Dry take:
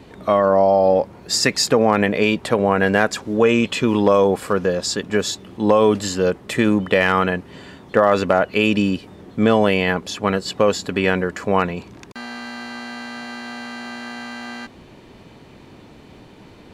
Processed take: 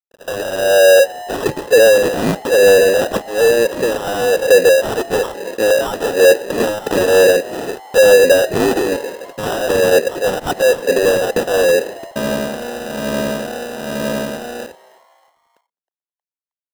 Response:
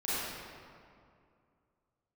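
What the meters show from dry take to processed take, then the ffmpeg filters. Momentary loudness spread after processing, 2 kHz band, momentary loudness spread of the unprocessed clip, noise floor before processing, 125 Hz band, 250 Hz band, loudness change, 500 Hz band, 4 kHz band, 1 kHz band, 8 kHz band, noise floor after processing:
15 LU, +4.0 dB, 16 LU, -45 dBFS, -3.5 dB, -3.0 dB, +4.0 dB, +7.0 dB, +2.5 dB, -2.0 dB, +5.0 dB, under -85 dBFS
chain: -filter_complex "[0:a]bandreject=f=610:w=12,agate=range=0.178:threshold=0.0112:ratio=16:detection=peak,asplit=3[s0][s1][s2];[s0]bandpass=f=530:t=q:w=8,volume=1[s3];[s1]bandpass=f=1840:t=q:w=8,volume=0.501[s4];[s2]bandpass=f=2480:t=q:w=8,volume=0.355[s5];[s3][s4][s5]amix=inputs=3:normalize=0,equalizer=f=3100:t=o:w=0.77:g=4,dynaudnorm=f=950:g=7:m=2.66,asplit=2[s6][s7];[s7]highpass=f=720:p=1,volume=35.5,asoftclip=type=tanh:threshold=0.473[s8];[s6][s8]amix=inputs=2:normalize=0,lowpass=f=1900:p=1,volume=0.501,acrossover=split=1000[s9][s10];[s9]aeval=exprs='val(0)*(1-1/2+1/2*cos(2*PI*1.1*n/s))':c=same[s11];[s10]aeval=exprs='val(0)*(1-1/2-1/2*cos(2*PI*1.1*n/s))':c=same[s12];[s11][s12]amix=inputs=2:normalize=0,acrusher=samples=20:mix=1:aa=0.000001,adynamicequalizer=threshold=0.0501:dfrequency=530:dqfactor=0.97:tfrequency=530:tqfactor=0.97:attack=5:release=100:ratio=0.375:range=2:mode=boostabove:tftype=bell,aeval=exprs='sgn(val(0))*max(abs(val(0))-0.00531,0)':c=same,asplit=4[s13][s14][s15][s16];[s14]adelay=315,afreqshift=150,volume=0.075[s17];[s15]adelay=630,afreqshift=300,volume=0.0351[s18];[s16]adelay=945,afreqshift=450,volume=0.0166[s19];[s13][s17][s18][s19]amix=inputs=4:normalize=0,volume=1.5"

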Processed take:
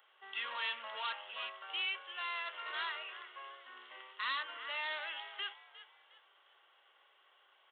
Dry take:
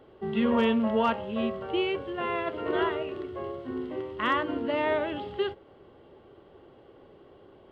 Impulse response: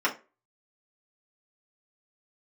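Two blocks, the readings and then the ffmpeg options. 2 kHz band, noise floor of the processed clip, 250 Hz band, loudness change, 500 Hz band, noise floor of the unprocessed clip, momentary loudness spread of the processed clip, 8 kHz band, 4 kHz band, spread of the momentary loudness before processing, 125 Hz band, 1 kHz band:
-4.0 dB, -69 dBFS, under -40 dB, -10.5 dB, -26.0 dB, -55 dBFS, 15 LU, no reading, -0.5 dB, 11 LU, under -40 dB, -11.5 dB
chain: -filter_complex "[0:a]highpass=890,equalizer=f=1400:w=0.42:g=8,asplit=4[s0][s1][s2][s3];[s1]adelay=356,afreqshift=55,volume=0.141[s4];[s2]adelay=712,afreqshift=110,volume=0.0479[s5];[s3]adelay=1068,afreqshift=165,volume=0.0164[s6];[s0][s4][s5][s6]amix=inputs=4:normalize=0,aresample=8000,asoftclip=type=tanh:threshold=0.0631,aresample=44100,aderivative,volume=1.58"

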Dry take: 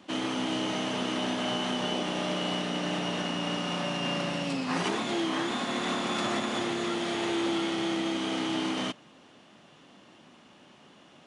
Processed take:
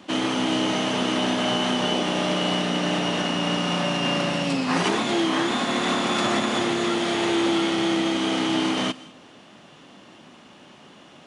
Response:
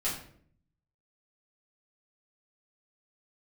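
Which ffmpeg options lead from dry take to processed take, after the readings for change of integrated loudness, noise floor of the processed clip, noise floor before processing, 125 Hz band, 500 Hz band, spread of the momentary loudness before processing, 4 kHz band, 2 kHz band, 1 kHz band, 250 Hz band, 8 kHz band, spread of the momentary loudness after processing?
+7.0 dB, -49 dBFS, -56 dBFS, +7.0 dB, +7.0 dB, 2 LU, +7.0 dB, +7.0 dB, +7.0 dB, +7.0 dB, +7.0 dB, 2 LU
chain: -filter_complex "[0:a]asplit=2[s0][s1];[1:a]atrim=start_sample=2205,highshelf=f=4100:g=8.5,adelay=138[s2];[s1][s2]afir=irnorm=-1:irlink=0,volume=0.0355[s3];[s0][s3]amix=inputs=2:normalize=0,volume=2.24"

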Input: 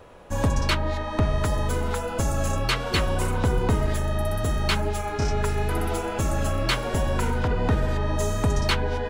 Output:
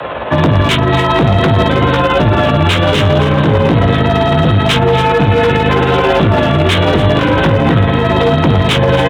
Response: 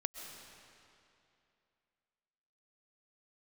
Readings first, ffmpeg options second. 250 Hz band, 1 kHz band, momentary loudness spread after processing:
+17.0 dB, +16.0 dB, 1 LU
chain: -filter_complex "[0:a]lowshelf=f=250:g=-9.5,acrossover=split=440|3000[s0][s1][s2];[s1]acompressor=threshold=0.00631:ratio=2[s3];[s0][s3][s2]amix=inputs=3:normalize=0,flanger=delay=17:depth=5:speed=0.51,tremolo=f=18:d=0.42,aresample=8000,asoftclip=type=tanh:threshold=0.0158,aresample=44100,afreqshift=38,acrossover=split=320[s4][s5];[s5]asoftclip=type=hard:threshold=0.0112[s6];[s4][s6]amix=inputs=2:normalize=0,afreqshift=15,aecho=1:1:280:0.224,alimiter=level_in=56.2:limit=0.891:release=50:level=0:latency=1,volume=0.891"

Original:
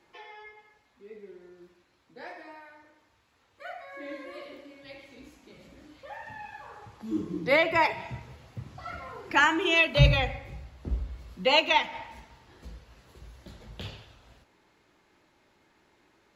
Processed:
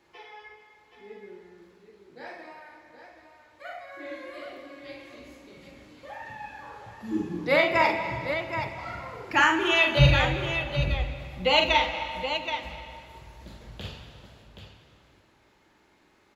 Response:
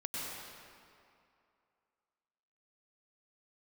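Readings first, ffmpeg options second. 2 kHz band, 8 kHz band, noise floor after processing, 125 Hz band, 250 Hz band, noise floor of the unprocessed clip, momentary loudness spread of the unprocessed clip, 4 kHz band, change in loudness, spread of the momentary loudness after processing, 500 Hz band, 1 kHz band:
+2.0 dB, +2.0 dB, -63 dBFS, +2.5 dB, +2.0 dB, -67 dBFS, 22 LU, +2.5 dB, +0.5 dB, 23 LU, +2.5 dB, +2.5 dB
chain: -filter_complex "[0:a]aecho=1:1:44|775:0.596|0.398,asplit=2[s0][s1];[1:a]atrim=start_sample=2205,adelay=76[s2];[s1][s2]afir=irnorm=-1:irlink=0,volume=0.251[s3];[s0][s3]amix=inputs=2:normalize=0"

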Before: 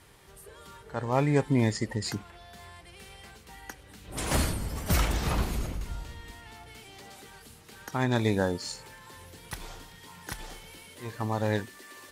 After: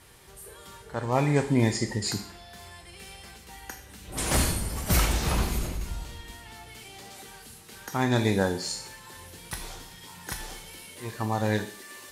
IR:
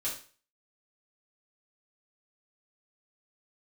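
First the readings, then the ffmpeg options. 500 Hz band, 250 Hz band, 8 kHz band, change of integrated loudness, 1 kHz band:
+1.5 dB, +2.0 dB, +6.0 dB, +2.0 dB, +2.0 dB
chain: -filter_complex "[0:a]asplit=2[s0][s1];[s1]highshelf=f=3400:g=11.5[s2];[1:a]atrim=start_sample=2205,asetrate=29106,aresample=44100[s3];[s2][s3]afir=irnorm=-1:irlink=0,volume=0.211[s4];[s0][s4]amix=inputs=2:normalize=0"

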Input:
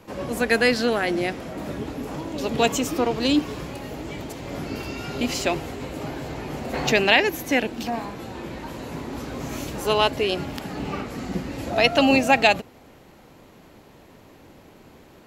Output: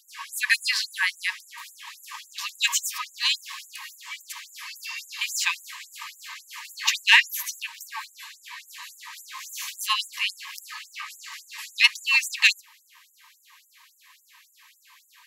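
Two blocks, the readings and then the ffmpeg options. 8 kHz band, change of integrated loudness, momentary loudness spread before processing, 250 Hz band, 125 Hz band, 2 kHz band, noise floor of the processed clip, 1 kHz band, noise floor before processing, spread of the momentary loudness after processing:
+5.0 dB, +0.5 dB, 16 LU, under -40 dB, under -40 dB, +1.5 dB, -62 dBFS, -10.5 dB, -50 dBFS, 20 LU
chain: -af "acontrast=60,asuperstop=centerf=1400:order=12:qfactor=5.4,afftfilt=real='re*gte(b*sr/1024,860*pow(6900/860,0.5+0.5*sin(2*PI*3.6*pts/sr)))':imag='im*gte(b*sr/1024,860*pow(6900/860,0.5+0.5*sin(2*PI*3.6*pts/sr)))':win_size=1024:overlap=0.75,volume=0.891"

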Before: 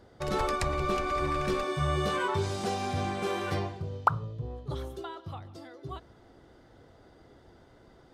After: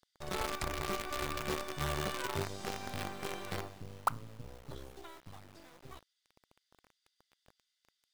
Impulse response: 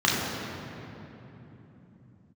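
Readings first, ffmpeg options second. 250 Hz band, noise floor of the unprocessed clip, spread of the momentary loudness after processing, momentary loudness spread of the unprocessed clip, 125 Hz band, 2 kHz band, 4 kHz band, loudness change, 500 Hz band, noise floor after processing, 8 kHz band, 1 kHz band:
-9.0 dB, -58 dBFS, 18 LU, 14 LU, -10.5 dB, -5.0 dB, -3.5 dB, -7.0 dB, -9.5 dB, -84 dBFS, -0.5 dB, -8.5 dB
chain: -filter_complex "[0:a]acrossover=split=2800[s0][s1];[s0]acrusher=bits=5:dc=4:mix=0:aa=0.000001[s2];[s2][s1]amix=inputs=2:normalize=0,volume=0.422"

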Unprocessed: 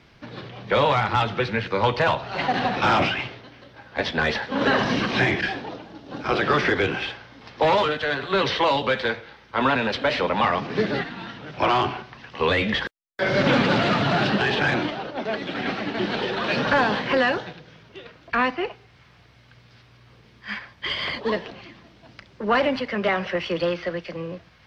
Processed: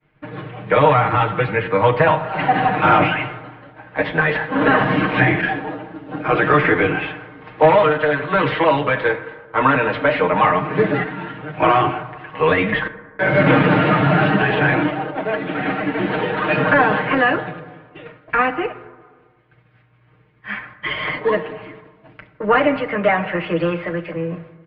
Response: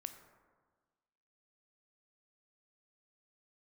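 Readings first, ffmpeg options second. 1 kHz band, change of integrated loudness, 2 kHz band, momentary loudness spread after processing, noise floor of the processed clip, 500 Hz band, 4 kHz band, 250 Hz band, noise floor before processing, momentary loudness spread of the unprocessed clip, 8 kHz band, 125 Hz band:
+6.0 dB, +5.5 dB, +5.5 dB, 14 LU, -55 dBFS, +6.0 dB, -3.5 dB, +5.5 dB, -54 dBFS, 14 LU, no reading, +7.5 dB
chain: -filter_complex "[0:a]agate=range=0.0224:threshold=0.00631:ratio=3:detection=peak,lowpass=f=2500:w=0.5412,lowpass=f=2500:w=1.3066,aecho=1:1:6.5:0.89,asplit=2[s0][s1];[1:a]atrim=start_sample=2205[s2];[s1][s2]afir=irnorm=-1:irlink=0,volume=2[s3];[s0][s3]amix=inputs=2:normalize=0,volume=0.668"

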